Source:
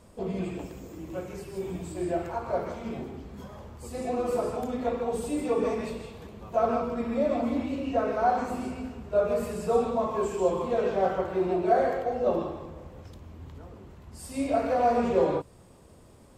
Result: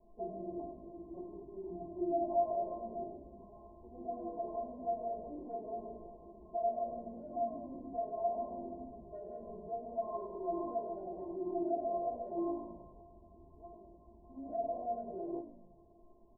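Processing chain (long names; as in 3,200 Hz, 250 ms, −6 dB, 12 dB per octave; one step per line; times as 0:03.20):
treble cut that deepens with the level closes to 710 Hz, closed at −20.5 dBFS
Butterworth low-pass 970 Hz 96 dB per octave
comb filter 4.7 ms, depth 82%
downward compressor, threshold −23 dBFS, peak gain reduction 8 dB
brickwall limiter −24 dBFS, peak gain reduction 9 dB
stiff-string resonator 340 Hz, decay 0.29 s, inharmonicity 0.008
echo with shifted repeats 100 ms, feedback 48%, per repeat −52 Hz, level −14 dB
level +9 dB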